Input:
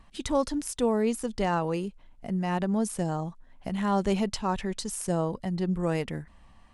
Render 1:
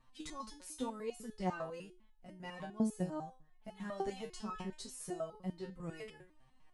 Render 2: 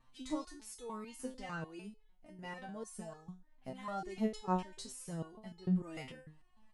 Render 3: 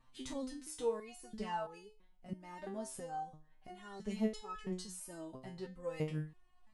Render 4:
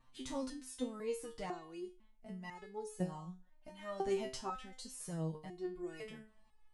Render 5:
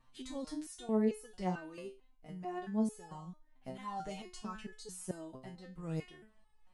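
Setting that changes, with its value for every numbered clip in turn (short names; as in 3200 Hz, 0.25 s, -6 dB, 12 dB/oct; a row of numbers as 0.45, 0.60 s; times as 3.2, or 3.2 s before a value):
stepped resonator, rate: 10, 6.7, 3, 2, 4.5 Hz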